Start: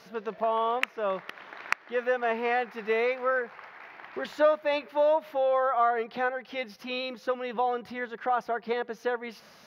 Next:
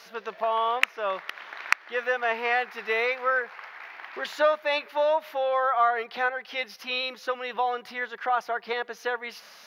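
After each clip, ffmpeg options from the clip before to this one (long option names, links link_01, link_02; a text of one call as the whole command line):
ffmpeg -i in.wav -af "highpass=frequency=1300:poles=1,volume=7dB" out.wav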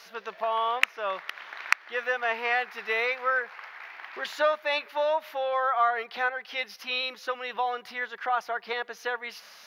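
ffmpeg -i in.wav -af "equalizer=frequency=250:width=0.38:gain=-4.5" out.wav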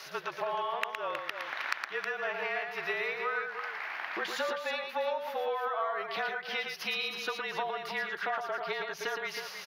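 ffmpeg -i in.wav -filter_complex "[0:a]acompressor=threshold=-36dB:ratio=6,afreqshift=-38,asplit=2[link_01][link_02];[link_02]aecho=0:1:114|317:0.531|0.398[link_03];[link_01][link_03]amix=inputs=2:normalize=0,volume=4dB" out.wav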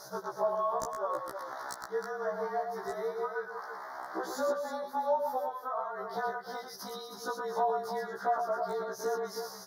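ffmpeg -i in.wav -af "aeval=exprs='0.0891*(abs(mod(val(0)/0.0891+3,4)-2)-1)':channel_layout=same,asuperstop=centerf=2600:order=4:qfactor=0.55,afftfilt=real='re*1.73*eq(mod(b,3),0)':imag='im*1.73*eq(mod(b,3),0)':win_size=2048:overlap=0.75,volume=6dB" out.wav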